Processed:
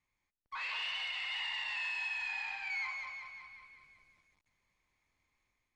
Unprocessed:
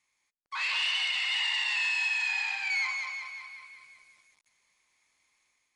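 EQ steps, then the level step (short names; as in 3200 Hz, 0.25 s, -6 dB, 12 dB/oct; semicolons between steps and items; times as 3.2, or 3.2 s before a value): RIAA curve playback; -5.0 dB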